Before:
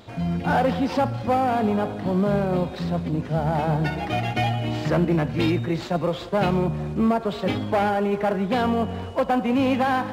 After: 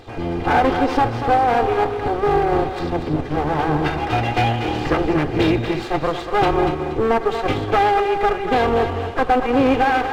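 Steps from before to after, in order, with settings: minimum comb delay 2.5 ms; high shelf 4900 Hz -9.5 dB; on a send: thinning echo 0.238 s, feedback 35%, level -7.5 dB; on the sum: gain +6.5 dB

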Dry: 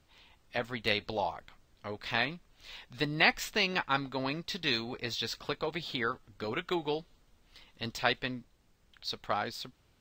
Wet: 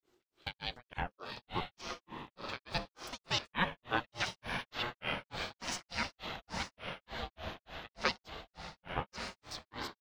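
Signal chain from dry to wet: slices in reverse order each 0.174 s, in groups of 3; low shelf 360 Hz -4.5 dB; notch 2300 Hz, Q 5.5; diffused feedback echo 1.026 s, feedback 54%, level -3 dB; grains 0.246 s, grains 3.4/s, pitch spread up and down by 7 st; ring modulator 360 Hz; gain +1 dB

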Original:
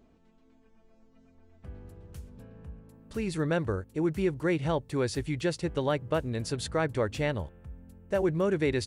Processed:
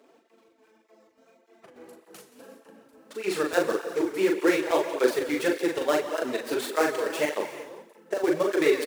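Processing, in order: switching dead time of 0.1 ms; HPF 320 Hz 24 dB/oct; in parallel at 0 dB: limiter -24 dBFS, peak gain reduction 9 dB; on the sum: chopper 3.4 Hz, depth 65%, duty 65%; doubler 40 ms -3.5 dB; feedback echo 0.175 s, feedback 43%, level -16.5 dB; non-linear reverb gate 0.41 s flat, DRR 9 dB; tape flanging out of phase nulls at 1.7 Hz, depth 6.1 ms; gain +4.5 dB

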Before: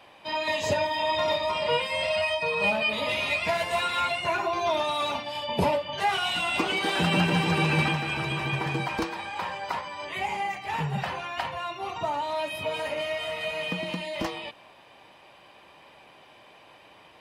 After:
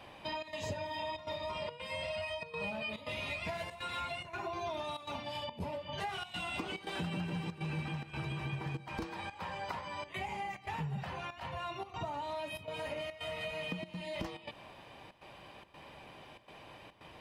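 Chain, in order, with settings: low shelf 210 Hz +12 dB; compressor 5:1, threshold -36 dBFS, peak gain reduction 19.5 dB; step gate "xxxx.xxxxxx." 142 bpm -12 dB; gain -1.5 dB

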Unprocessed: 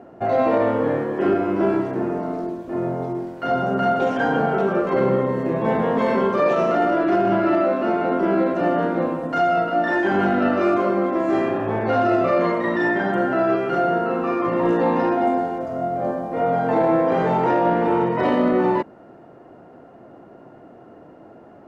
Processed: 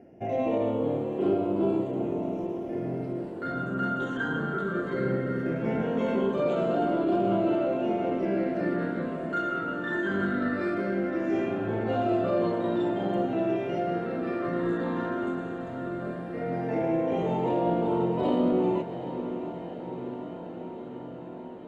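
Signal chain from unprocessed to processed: phaser stages 8, 0.18 Hz, lowest notch 700–1800 Hz; diffused feedback echo 0.751 s, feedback 74%, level -11 dB; gain -6 dB

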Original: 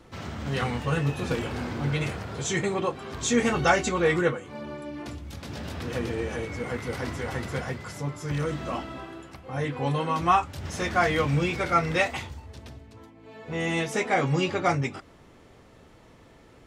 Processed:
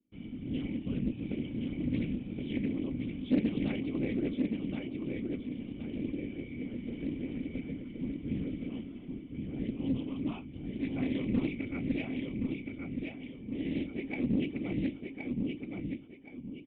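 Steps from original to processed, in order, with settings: HPF 180 Hz 6 dB/oct; gate with hold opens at -42 dBFS; low shelf 240 Hz +8.5 dB; whisperiser; vocal tract filter i; added harmonics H 6 -37 dB, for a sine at -16 dBFS; feedback echo 1.071 s, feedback 33%, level -4 dB; Doppler distortion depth 0.27 ms

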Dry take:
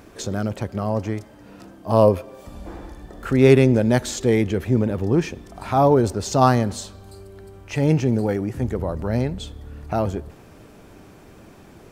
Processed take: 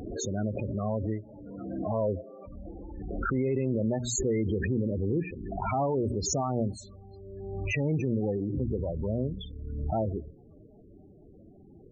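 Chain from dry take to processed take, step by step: notches 60/120/180/240/300 Hz; loudest bins only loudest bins 16; limiter -14 dBFS, peak gain reduction 11.5 dB; backwards sustainer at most 33 dB/s; gain -6 dB

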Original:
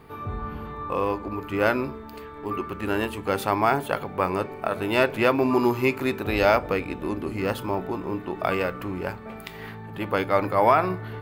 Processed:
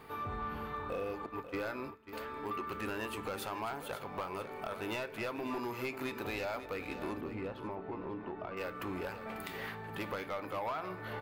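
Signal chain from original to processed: 0.74–1.2 spectral repair 760–1700 Hz; 1.26–2.13 gate -29 dBFS, range -22 dB; low shelf 370 Hz -9.5 dB; compressor 5:1, threshold -33 dBFS, peak gain reduction 16 dB; soft clip -30.5 dBFS, distortion -12 dB; 7.21–8.57 tape spacing loss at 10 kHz 36 dB; echo 0.543 s -11.5 dB; on a send at -17.5 dB: reverb RT60 1.0 s, pre-delay 3 ms

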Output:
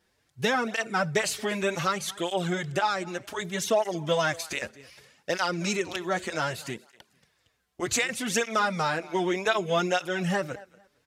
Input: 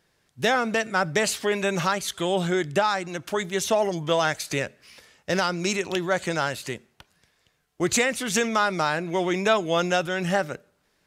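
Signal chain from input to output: on a send: feedback echo 0.228 s, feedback 22%, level -21.5 dB; on the sum: tape flanging out of phase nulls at 0.65 Hz, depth 7.5 ms

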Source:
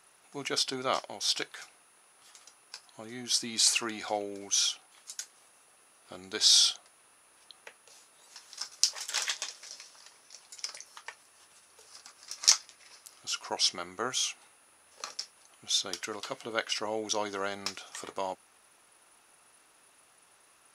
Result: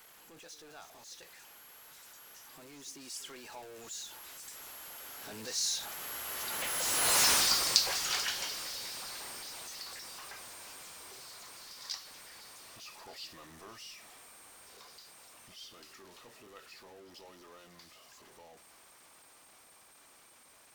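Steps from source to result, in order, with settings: zero-crossing step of -25.5 dBFS; Doppler pass-by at 7.24, 47 m/s, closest 9.6 m; pre-echo 89 ms -15 dB; gain +6 dB

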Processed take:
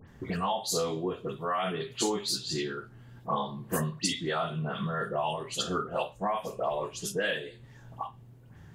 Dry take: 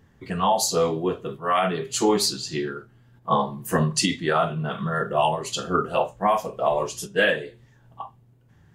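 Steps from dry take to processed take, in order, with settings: dynamic EQ 3600 Hz, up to +6 dB, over -44 dBFS, Q 3.1; compressor 2.5:1, threshold -39 dBFS, peak gain reduction 15.5 dB; dispersion highs, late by 81 ms, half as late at 2500 Hz; gain +4.5 dB

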